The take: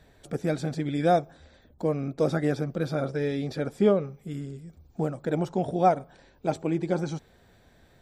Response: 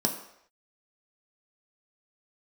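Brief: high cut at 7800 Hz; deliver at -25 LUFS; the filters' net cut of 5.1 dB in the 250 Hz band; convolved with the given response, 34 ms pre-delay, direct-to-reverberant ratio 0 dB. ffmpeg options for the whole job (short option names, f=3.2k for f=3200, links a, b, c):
-filter_complex "[0:a]lowpass=7.8k,equalizer=f=250:t=o:g=-8,asplit=2[a][b];[1:a]atrim=start_sample=2205,adelay=34[c];[b][c]afir=irnorm=-1:irlink=0,volume=-8dB[d];[a][d]amix=inputs=2:normalize=0,volume=-1dB"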